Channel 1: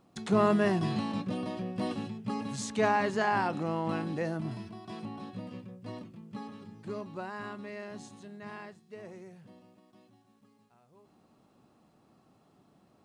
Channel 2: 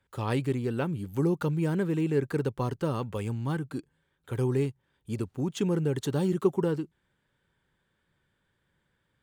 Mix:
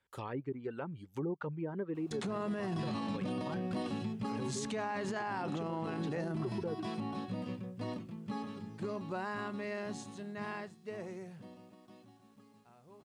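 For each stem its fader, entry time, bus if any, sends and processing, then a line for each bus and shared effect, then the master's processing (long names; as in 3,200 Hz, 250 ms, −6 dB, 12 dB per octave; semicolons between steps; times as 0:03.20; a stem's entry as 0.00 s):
+3.0 dB, 1.95 s, no send, no processing
−3.5 dB, 0.00 s, no send, treble cut that deepens with the level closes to 980 Hz, closed at −23 dBFS; reverb reduction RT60 1.1 s; low-shelf EQ 260 Hz −9.5 dB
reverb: not used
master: brickwall limiter −29 dBFS, peak gain reduction 17.5 dB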